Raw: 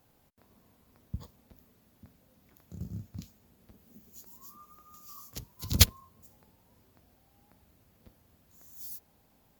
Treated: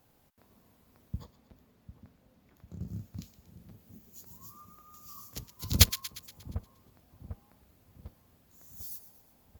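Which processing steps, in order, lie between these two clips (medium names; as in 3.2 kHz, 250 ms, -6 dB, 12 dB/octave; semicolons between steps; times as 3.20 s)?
1.23–2.88 s: treble shelf 5.8 kHz -10 dB; two-band feedback delay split 1.1 kHz, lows 748 ms, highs 118 ms, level -13.5 dB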